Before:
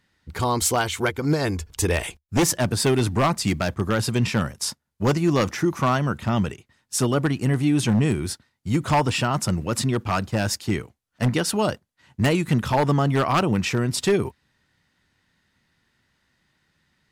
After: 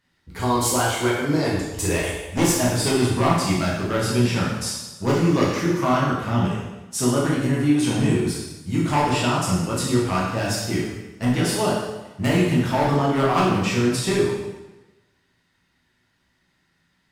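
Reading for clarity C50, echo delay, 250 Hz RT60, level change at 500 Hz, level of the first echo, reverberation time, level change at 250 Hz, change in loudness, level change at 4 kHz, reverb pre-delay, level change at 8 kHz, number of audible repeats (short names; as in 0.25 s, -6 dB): 1.0 dB, none, 1.1 s, +2.0 dB, none, 1.1 s, +2.5 dB, +1.0 dB, +1.0 dB, 5 ms, +1.0 dB, none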